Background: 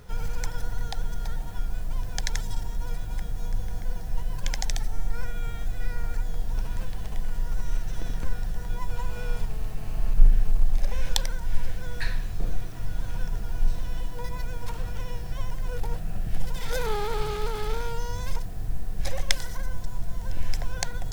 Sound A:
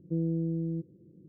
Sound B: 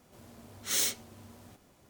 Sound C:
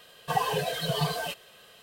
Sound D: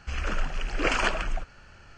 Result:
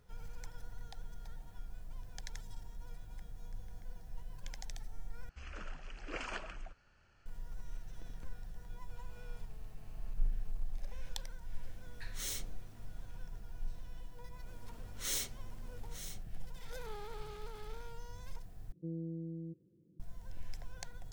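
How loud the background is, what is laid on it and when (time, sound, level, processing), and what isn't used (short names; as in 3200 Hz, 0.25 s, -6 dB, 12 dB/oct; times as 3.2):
background -17.5 dB
5.29 replace with D -17 dB
11.49 add B -12 dB
14.34 add B -8 dB + echo 0.905 s -11.5 dB
18.72 replace with A -11.5 dB
not used: C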